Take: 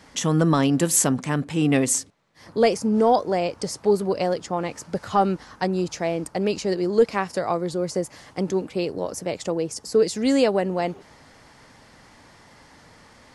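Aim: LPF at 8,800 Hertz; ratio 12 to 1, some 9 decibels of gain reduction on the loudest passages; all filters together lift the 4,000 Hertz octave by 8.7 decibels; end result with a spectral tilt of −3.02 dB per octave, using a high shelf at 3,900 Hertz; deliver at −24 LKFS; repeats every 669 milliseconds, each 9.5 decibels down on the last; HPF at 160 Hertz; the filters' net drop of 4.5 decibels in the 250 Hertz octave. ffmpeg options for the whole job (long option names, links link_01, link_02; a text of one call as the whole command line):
ffmpeg -i in.wav -af "highpass=160,lowpass=8800,equalizer=frequency=250:width_type=o:gain=-5,highshelf=frequency=3900:gain=7.5,equalizer=frequency=4000:width_type=o:gain=6.5,acompressor=threshold=-21dB:ratio=12,aecho=1:1:669|1338|2007|2676:0.335|0.111|0.0365|0.012,volume=3dB" out.wav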